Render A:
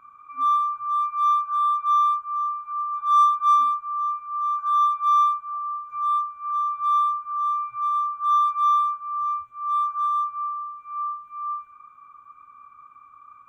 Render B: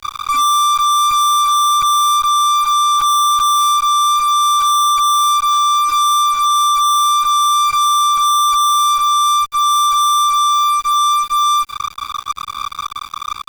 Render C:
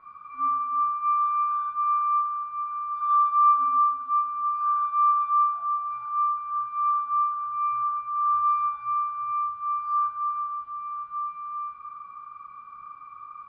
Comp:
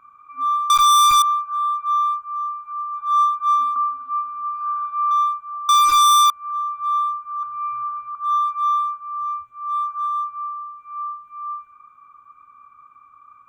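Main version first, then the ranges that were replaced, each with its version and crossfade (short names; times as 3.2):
A
0.7–1.22 from B
3.76–5.11 from C
5.69–6.3 from B
7.43–8.15 from C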